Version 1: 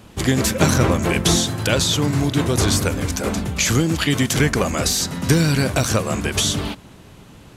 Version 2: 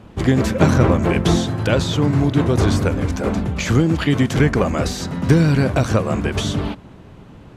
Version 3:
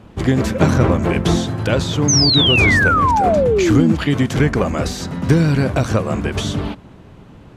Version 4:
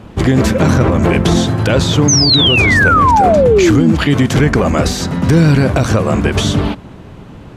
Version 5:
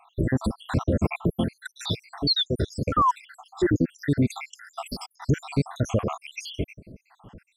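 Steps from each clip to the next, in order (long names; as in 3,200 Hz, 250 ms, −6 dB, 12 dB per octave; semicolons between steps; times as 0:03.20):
low-pass filter 1,300 Hz 6 dB per octave; level +3 dB
sound drawn into the spectrogram fall, 0:02.08–0:03.93, 210–6,500 Hz −15 dBFS
boost into a limiter +8.5 dB; level −1 dB
time-frequency cells dropped at random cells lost 80%; level −9 dB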